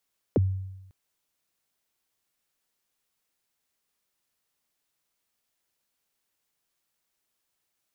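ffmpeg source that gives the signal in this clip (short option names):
-f lavfi -i "aevalsrc='0.15*pow(10,-3*t/0.97)*sin(2*PI*(590*0.025/log(95/590)*(exp(log(95/590)*min(t,0.025)/0.025)-1)+95*max(t-0.025,0)))':d=0.55:s=44100"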